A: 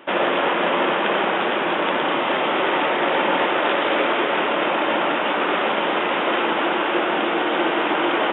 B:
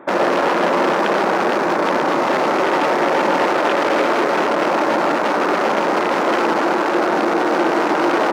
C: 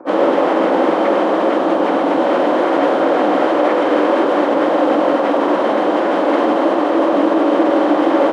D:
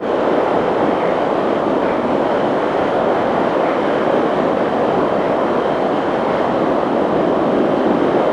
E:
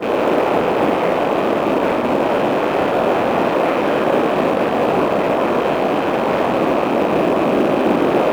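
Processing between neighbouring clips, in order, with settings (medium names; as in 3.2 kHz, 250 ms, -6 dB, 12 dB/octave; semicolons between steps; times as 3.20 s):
local Wiener filter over 15 samples; in parallel at +1 dB: peak limiter -16.5 dBFS, peak gain reduction 9 dB
frequency axis rescaled in octaves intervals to 85%; bass shelf 86 Hz -10 dB; small resonant body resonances 290/560/3100 Hz, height 9 dB, ringing for 45 ms; trim +2 dB
every event in the spectrogram widened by 120 ms; whisper effect; trim -6 dB
rattle on loud lows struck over -28 dBFS, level -19 dBFS; in parallel at -11.5 dB: short-mantissa float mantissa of 2-bit; on the sum: trim -2.5 dB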